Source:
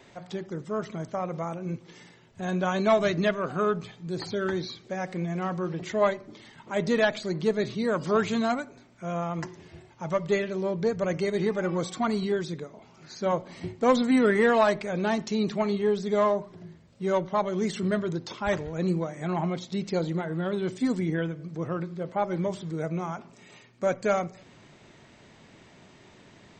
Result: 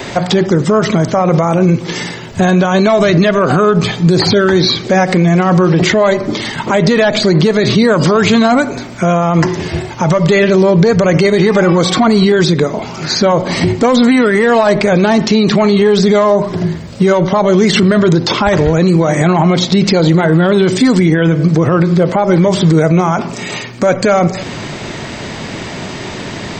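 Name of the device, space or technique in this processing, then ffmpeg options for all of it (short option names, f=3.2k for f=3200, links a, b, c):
mastering chain: -filter_complex "[0:a]equalizer=f=4.8k:t=o:w=0.29:g=3.5,acrossover=split=830|4900[a][b][c];[a]acompressor=threshold=-27dB:ratio=4[d];[b]acompressor=threshold=-34dB:ratio=4[e];[c]acompressor=threshold=-54dB:ratio=4[f];[d][e][f]amix=inputs=3:normalize=0,acompressor=threshold=-36dB:ratio=1.5,alimiter=level_in=30.5dB:limit=-1dB:release=50:level=0:latency=1,volume=-1dB"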